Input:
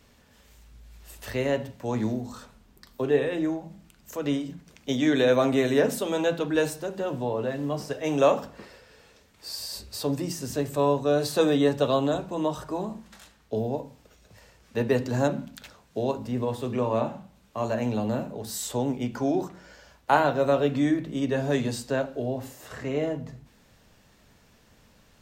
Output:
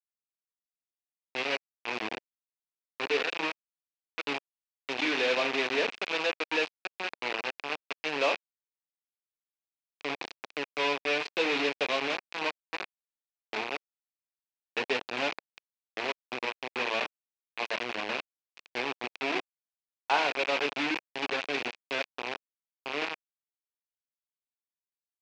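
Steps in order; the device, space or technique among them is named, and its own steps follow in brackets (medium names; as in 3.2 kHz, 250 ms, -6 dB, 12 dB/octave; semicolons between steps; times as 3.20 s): hand-held game console (bit crusher 4-bit; cabinet simulation 430–4800 Hz, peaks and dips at 590 Hz -5 dB, 1.3 kHz -3 dB, 2.5 kHz +10 dB); trim -4.5 dB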